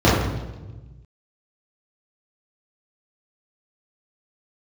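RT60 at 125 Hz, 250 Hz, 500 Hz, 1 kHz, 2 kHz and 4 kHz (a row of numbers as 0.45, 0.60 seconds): 1.9, 1.5, 1.3, 1.0, 0.90, 0.95 seconds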